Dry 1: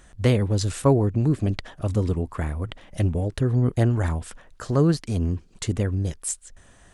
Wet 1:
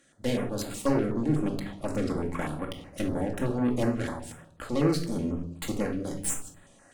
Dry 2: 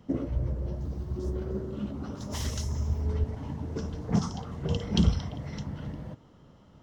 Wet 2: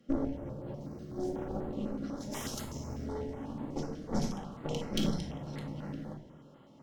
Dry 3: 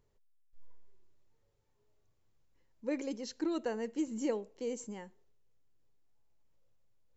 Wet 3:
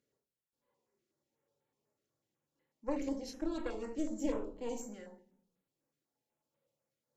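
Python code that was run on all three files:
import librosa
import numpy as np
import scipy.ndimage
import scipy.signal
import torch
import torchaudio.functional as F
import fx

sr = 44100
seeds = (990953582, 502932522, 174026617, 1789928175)

y = scipy.signal.sosfilt(scipy.signal.butter(2, 220.0, 'highpass', fs=sr, output='sos'), x)
y = fx.rider(y, sr, range_db=4, speed_s=2.0)
y = 10.0 ** (-13.5 / 20.0) * np.tanh(y / 10.0 ** (-13.5 / 20.0))
y = fx.cheby_harmonics(y, sr, harmonics=(8,), levels_db=(-16,), full_scale_db=-14.0)
y = fx.room_shoebox(y, sr, seeds[0], volume_m3=850.0, walls='furnished', distance_m=2.3)
y = fx.filter_held_notch(y, sr, hz=8.1, low_hz=930.0, high_hz=5700.0)
y = y * 10.0 ** (-5.0 / 20.0)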